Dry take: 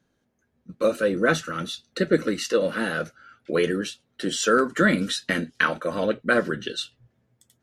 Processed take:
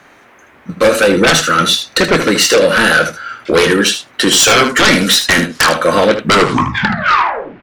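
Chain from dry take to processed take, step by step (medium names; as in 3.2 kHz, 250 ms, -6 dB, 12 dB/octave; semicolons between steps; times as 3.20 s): tape stop on the ending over 1.50 s; tilt shelf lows -4.5 dB, about 630 Hz; in parallel at +0.5 dB: compression, threshold -30 dBFS, peak gain reduction 16 dB; on the sum: sine folder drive 15 dB, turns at -0.5 dBFS; band noise 250–2200 Hz -41 dBFS; on a send: early reflections 24 ms -12 dB, 77 ms -9.5 dB; on the sum: trim -5 dB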